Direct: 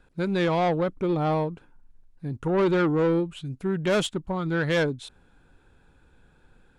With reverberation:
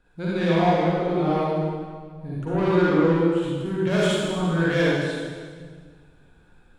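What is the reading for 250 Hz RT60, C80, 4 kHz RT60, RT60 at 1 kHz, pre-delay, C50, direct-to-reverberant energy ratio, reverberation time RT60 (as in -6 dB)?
1.9 s, -2.0 dB, 1.5 s, 1.6 s, 39 ms, -6.0 dB, -8.0 dB, 1.7 s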